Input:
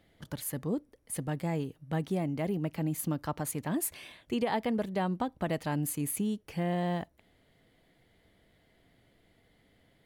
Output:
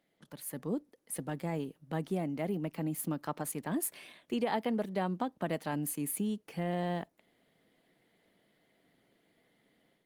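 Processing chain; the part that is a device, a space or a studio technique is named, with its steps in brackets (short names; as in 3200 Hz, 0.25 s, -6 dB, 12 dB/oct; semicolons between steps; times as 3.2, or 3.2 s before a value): video call (HPF 160 Hz 24 dB/oct; AGC gain up to 7 dB; gain -8.5 dB; Opus 24 kbps 48000 Hz)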